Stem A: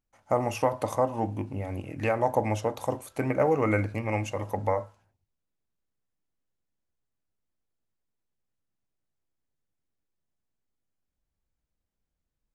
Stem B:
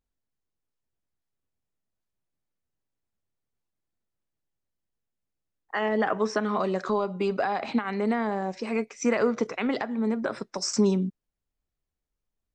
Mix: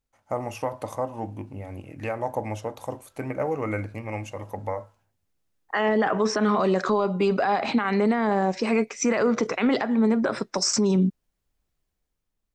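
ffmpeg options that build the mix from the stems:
-filter_complex "[0:a]volume=-3.5dB[a];[1:a]dynaudnorm=f=100:g=13:m=6dB,volume=2dB[b];[a][b]amix=inputs=2:normalize=0,alimiter=limit=-14dB:level=0:latency=1:release=23"

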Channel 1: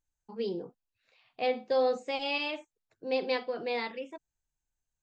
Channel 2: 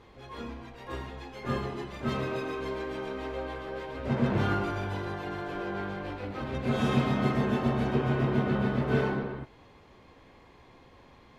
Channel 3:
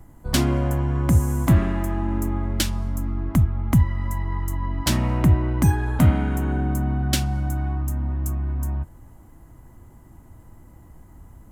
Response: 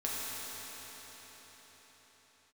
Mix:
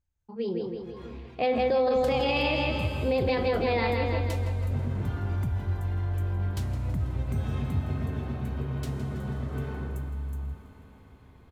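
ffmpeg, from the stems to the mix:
-filter_complex "[0:a]highshelf=f=4.7k:g=-10.5,dynaudnorm=f=140:g=13:m=8.5dB,volume=0dB,asplit=2[a][b];[b]volume=-4.5dB[c];[1:a]adelay=650,volume=-10dB,asplit=2[d][e];[e]volume=-13.5dB[f];[2:a]adelay=1700,volume=-20dB,asplit=3[g][h][i];[h]volume=-14dB[j];[i]volume=-15dB[k];[d][g]amix=inputs=2:normalize=0,acompressor=threshold=-37dB:ratio=6,volume=0dB[l];[3:a]atrim=start_sample=2205[m];[f][j]amix=inputs=2:normalize=0[n];[n][m]afir=irnorm=-1:irlink=0[o];[c][k]amix=inputs=2:normalize=0,aecho=0:1:163|326|489|652|815|978|1141|1304:1|0.56|0.314|0.176|0.0983|0.0551|0.0308|0.0173[p];[a][l][o][p]amix=inputs=4:normalize=0,equalizer=f=82:w=0.71:g=12.5,alimiter=limit=-17.5dB:level=0:latency=1:release=25"

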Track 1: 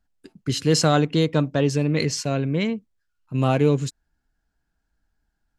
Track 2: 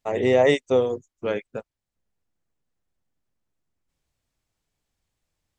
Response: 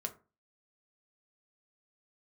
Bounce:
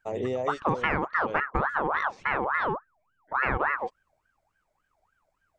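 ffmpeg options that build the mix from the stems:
-filter_complex "[0:a]lowpass=f=1.1k:t=q:w=1.7,aeval=exprs='val(0)*sin(2*PI*1100*n/s+1100*0.45/3.5*sin(2*PI*3.5*n/s))':c=same,volume=0.5dB[a];[1:a]acompressor=threshold=-22dB:ratio=6,equalizer=f=1.8k:t=o:w=1.1:g=-8,volume=-4.5dB[b];[a][b]amix=inputs=2:normalize=0,lowshelf=f=130:g=4.5,acompressor=threshold=-22dB:ratio=6"

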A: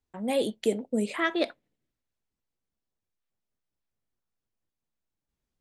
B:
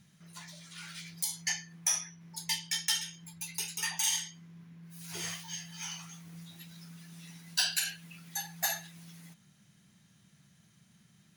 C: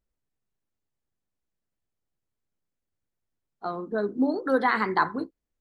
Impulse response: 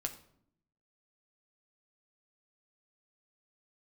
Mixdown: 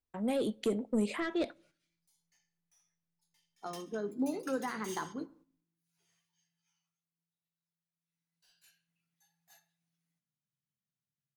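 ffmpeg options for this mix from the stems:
-filter_complex "[0:a]asoftclip=type=tanh:threshold=-21dB,volume=-1dB,asplit=2[a][b];[b]volume=-20dB[c];[1:a]asoftclip=type=tanh:threshold=-29.5dB,adelay=850,volume=4.5dB,afade=t=out:st=6.49:d=0.51:silence=0.334965,afade=t=in:st=8.02:d=0.69:silence=0.223872,asplit=2[d][e];[e]volume=-21dB[f];[2:a]volume=-11dB,asplit=3[g][h][i];[h]volume=-9dB[j];[i]apad=whole_len=538655[k];[d][k]sidechaingate=range=-42dB:threshold=-41dB:ratio=16:detection=peak[l];[3:a]atrim=start_sample=2205[m];[c][f][j]amix=inputs=3:normalize=0[n];[n][m]afir=irnorm=-1:irlink=0[o];[a][l][g][o]amix=inputs=4:normalize=0,agate=range=-9dB:threshold=-60dB:ratio=16:detection=peak,acrossover=split=440[p][q];[q]acompressor=threshold=-40dB:ratio=2.5[r];[p][r]amix=inputs=2:normalize=0"

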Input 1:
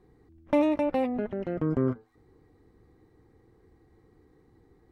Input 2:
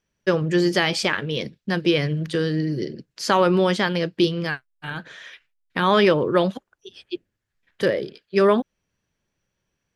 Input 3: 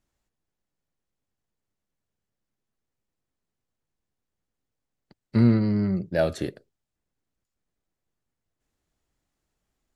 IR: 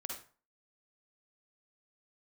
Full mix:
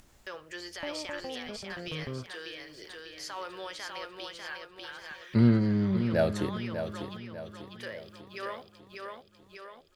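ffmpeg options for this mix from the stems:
-filter_complex "[0:a]equalizer=f=300:t=o:w=0.72:g=-12,acrossover=split=470[a][b];[b]acompressor=threshold=-36dB:ratio=6[c];[a][c]amix=inputs=2:normalize=0,adelay=300,volume=-7dB[d];[1:a]highpass=830,alimiter=limit=-17.5dB:level=0:latency=1,acrusher=bits=9:mix=0:aa=0.000001,volume=-12.5dB,asplit=3[e][f][g];[f]volume=-15.5dB[h];[g]volume=-3dB[i];[2:a]volume=-3dB,asplit=3[j][k][l];[k]volume=-9dB[m];[l]apad=whole_len=439190[n];[e][n]sidechaincompress=threshold=-46dB:ratio=8:attack=16:release=114[o];[3:a]atrim=start_sample=2205[p];[h][p]afir=irnorm=-1:irlink=0[q];[i][m]amix=inputs=2:normalize=0,aecho=0:1:596|1192|1788|2384|2980|3576:1|0.43|0.185|0.0795|0.0342|0.0147[r];[d][o][j][q][r]amix=inputs=5:normalize=0,acompressor=mode=upward:threshold=-41dB:ratio=2.5"

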